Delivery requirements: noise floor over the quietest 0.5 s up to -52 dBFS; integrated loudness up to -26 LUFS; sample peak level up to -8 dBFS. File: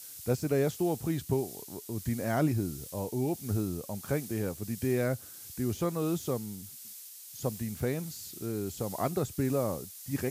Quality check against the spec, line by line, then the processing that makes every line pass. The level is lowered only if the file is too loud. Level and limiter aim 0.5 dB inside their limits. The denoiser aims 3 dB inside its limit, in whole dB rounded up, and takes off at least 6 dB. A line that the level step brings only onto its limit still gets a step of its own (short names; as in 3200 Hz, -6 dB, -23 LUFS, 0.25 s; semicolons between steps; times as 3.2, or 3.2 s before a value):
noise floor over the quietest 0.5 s -47 dBFS: fail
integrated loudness -33.0 LUFS: OK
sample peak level -16.5 dBFS: OK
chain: denoiser 8 dB, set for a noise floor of -47 dBFS